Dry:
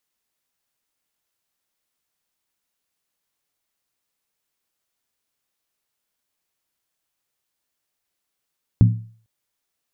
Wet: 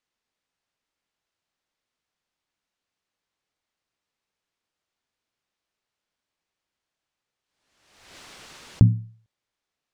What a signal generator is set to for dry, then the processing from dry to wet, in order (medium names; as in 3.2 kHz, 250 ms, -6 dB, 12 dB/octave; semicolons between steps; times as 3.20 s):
skin hit length 0.45 s, lowest mode 112 Hz, decay 0.46 s, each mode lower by 7 dB, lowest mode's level -6.5 dB
distance through air 91 m; swell ahead of each attack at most 55 dB/s